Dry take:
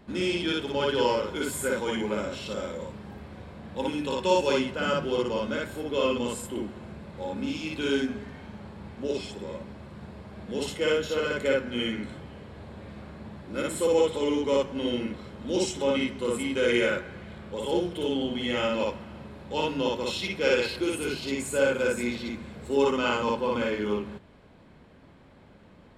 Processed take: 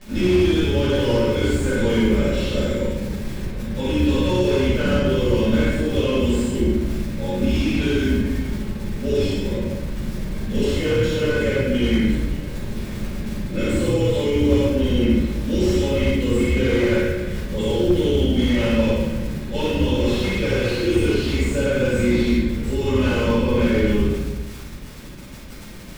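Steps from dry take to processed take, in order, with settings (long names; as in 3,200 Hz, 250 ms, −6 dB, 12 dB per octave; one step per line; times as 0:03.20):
sub-octave generator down 2 octaves, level −1 dB
Butterworth low-pass 8,800 Hz
flat-topped bell 970 Hz −8.5 dB 1.2 octaves
brickwall limiter −22 dBFS, peak gain reduction 11.5 dB
surface crackle 67 per second −29 dBFS
rectangular room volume 370 cubic metres, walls mixed, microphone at 5.7 metres
slew-rate limiting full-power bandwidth 150 Hz
level −2.5 dB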